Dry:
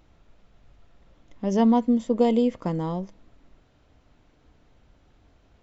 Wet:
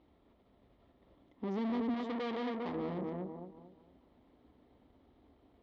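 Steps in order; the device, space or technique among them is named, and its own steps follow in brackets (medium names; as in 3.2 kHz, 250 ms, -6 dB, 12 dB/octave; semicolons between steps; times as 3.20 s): analogue delay pedal into a guitar amplifier (bucket-brigade echo 232 ms, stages 2048, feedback 35%, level -5.5 dB; valve stage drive 35 dB, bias 0.8; cabinet simulation 77–3700 Hz, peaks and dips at 100 Hz -7 dB, 150 Hz -9 dB, 260 Hz +6 dB, 380 Hz +4 dB, 1.5 kHz -10 dB, 2.6 kHz -8 dB); 1.94–2.75 s: tilt shelf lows -5.5 dB, about 710 Hz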